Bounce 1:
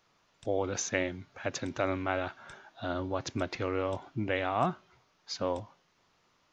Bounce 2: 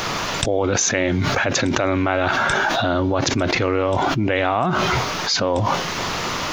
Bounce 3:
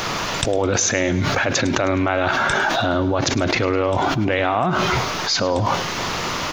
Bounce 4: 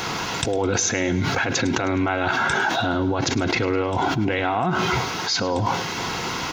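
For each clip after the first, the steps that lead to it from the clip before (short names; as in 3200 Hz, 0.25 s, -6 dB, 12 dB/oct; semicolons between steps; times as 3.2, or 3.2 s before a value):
fast leveller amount 100%; gain +5.5 dB
feedback echo 0.104 s, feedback 49%, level -16.5 dB
notch comb 600 Hz; gain -1.5 dB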